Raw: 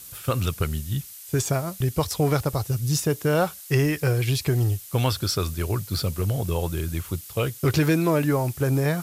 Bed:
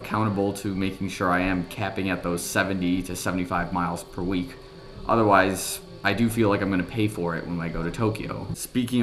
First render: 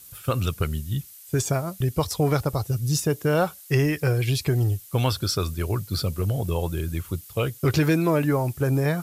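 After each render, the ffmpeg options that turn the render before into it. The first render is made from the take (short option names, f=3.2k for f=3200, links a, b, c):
-af "afftdn=nr=6:nf=-42"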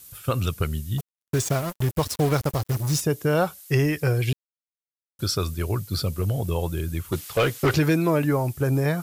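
-filter_complex "[0:a]asettb=1/sr,asplit=3[a][b][c];[a]atrim=end=0.984[d];[b]atrim=start=0.98:end=3.01,asetpts=PTS-STARTPTS,afade=t=in:d=0.004:c=qsin,afade=t=out:st=2.026:d=0.004:c=qsin,acrusher=bits=4:mix=0:aa=0.5[e];[c]atrim=start=3.006[f];[d][e]acrossfade=d=0.004:c1=hsin:c2=qsin[g];[g][f]acrossfade=d=0.004:c1=qsin:c2=hsin,asettb=1/sr,asplit=3[h][i][j];[h]atrim=end=7.124[k];[i]atrim=start=7.12:end=7.74,asetpts=PTS-STARTPTS,afade=t=in:d=0.004:c=qsin,afade=t=out:st=0.616:d=0.004:c=qsin,asplit=2[l][m];[m]highpass=f=720:p=1,volume=23dB,asoftclip=type=tanh:threshold=-11.5dB[n];[l][n]amix=inputs=2:normalize=0,lowpass=f=2.6k:p=1,volume=-6dB[o];[j]atrim=start=7.736[p];[k][o]acrossfade=d=0.004:c1=hsin:c2=qsin[q];[q][p]acrossfade=d=0.004:c1=qsin:c2=hsin,asplit=3[r][s][t];[r]atrim=end=4.33,asetpts=PTS-STARTPTS,afade=t=out:st=4.326:d=0.004:c=hsin[u];[s]atrim=start=4.33:end=5.19,asetpts=PTS-STARTPTS,volume=0[v];[t]atrim=start=5.19,asetpts=PTS-STARTPTS,afade=t=in:d=0.004:c=hsin[w];[u][v][w]concat=n=3:v=0:a=1"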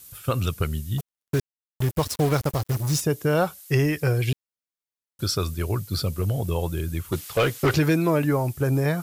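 -filter_complex "[0:a]asplit=3[a][b][c];[a]atrim=end=1.4,asetpts=PTS-STARTPTS,afade=t=out:st=1.396:d=0.004:c=hsin[d];[b]atrim=start=1.4:end=1.8,asetpts=PTS-STARTPTS,volume=0[e];[c]atrim=start=1.8,asetpts=PTS-STARTPTS,afade=t=in:d=0.004:c=hsin[f];[d][e][f]concat=n=3:v=0:a=1"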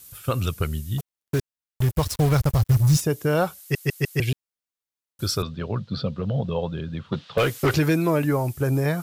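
-filter_complex "[0:a]asettb=1/sr,asplit=3[a][b][c];[a]atrim=end=1.354[d];[b]atrim=start=1.35:end=2.97,asetpts=PTS-STARTPTS,afade=t=in:d=0.004:c=qsin,afade=t=out:st=1.616:d=0.004:c=qsin,asubboost=boost=10.5:cutoff=130[e];[c]atrim=start=2.966[f];[d][e]acrossfade=d=0.004:c1=hsin:c2=qsin[g];[g][f]acrossfade=d=0.004:c1=qsin:c2=hsin,asettb=1/sr,asplit=3[h][i][j];[h]atrim=end=5.424[k];[i]atrim=start=5.42:end=7.38,asetpts=PTS-STARTPTS,afade=t=in:d=0.004:c=qsin,afade=t=out:st=1.956:d=0.004:c=qsin,highpass=140,equalizer=f=140:t=q:w=4:g=7,equalizer=f=210:t=q:w=4:g=9,equalizer=f=340:t=q:w=4:g=-8,equalizer=f=520:t=q:w=4:g=5,equalizer=f=2.2k:t=q:w=4:g=-8,equalizer=f=3.7k:t=q:w=4:g=4,lowpass=f=3.9k:w=0.5412,lowpass=f=3.9k:w=1.3066[l];[j]atrim=start=7.376[m];[k][l]acrossfade=d=0.004:c1=hsin:c2=qsin[n];[n][m]acrossfade=d=0.004:c1=qsin:c2=hsin,asplit=5[o][p][q][r][s];[o]atrim=end=3.752[t];[p]atrim=start=3.598:end=3.752[u];[q]atrim=start=3.598:end=3.752[v];[r]atrim=start=3.598:end=3.752[w];[s]atrim=start=4.198[x];[t][u]acrossfade=d=0.004:c1=hsin:c2=hsin[y];[y][v]acrossfade=d=0.004:c1=hsin:c2=hsin[z];[z][w]acrossfade=d=0.004:c1=hsin:c2=hsin[aa];[aa][x]acrossfade=d=0.004:c1=hsin:c2=hsin"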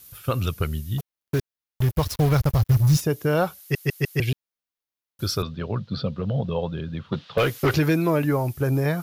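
-af "equalizer=f=8.1k:t=o:w=0.49:g=-7.5"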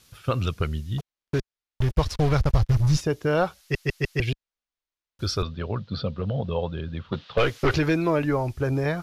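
-af "lowpass=6.1k,asubboost=boost=7:cutoff=51"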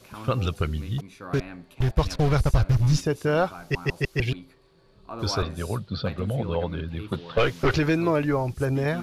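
-filter_complex "[1:a]volume=-16dB[a];[0:a][a]amix=inputs=2:normalize=0"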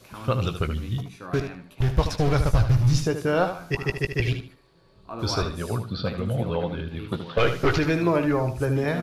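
-filter_complex "[0:a]asplit=2[a][b];[b]adelay=17,volume=-11dB[c];[a][c]amix=inputs=2:normalize=0,asplit=2[d][e];[e]aecho=0:1:76|152|228:0.355|0.0852|0.0204[f];[d][f]amix=inputs=2:normalize=0"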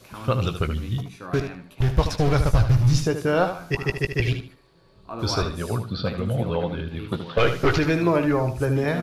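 -af "volume=1.5dB"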